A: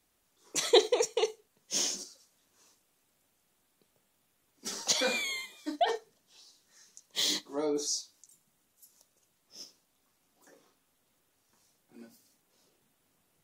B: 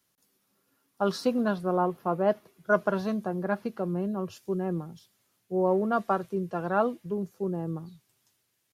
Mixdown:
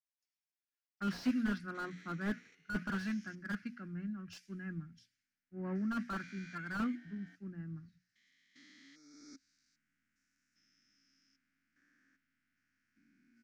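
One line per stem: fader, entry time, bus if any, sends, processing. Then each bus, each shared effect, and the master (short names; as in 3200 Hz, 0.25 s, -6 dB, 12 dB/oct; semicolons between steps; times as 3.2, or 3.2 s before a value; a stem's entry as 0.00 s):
9.03 s -20 dB -> 9.48 s -7.5 dB, 1.35 s, no send, stepped spectrum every 0.4 s
-6.0 dB, 0.00 s, no send, high shelf 2400 Hz +8.5 dB; notches 60/120/180/240 Hz; three-band expander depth 100%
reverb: off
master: EQ curve 190 Hz 0 dB, 270 Hz +6 dB, 430 Hz -23 dB, 640 Hz -20 dB, 1000 Hz -19 dB, 1500 Hz +11 dB, 2200 Hz +7 dB, 3600 Hz -10 dB, 5200 Hz -4 dB, 13000 Hz -28 dB; slew limiter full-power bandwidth 16 Hz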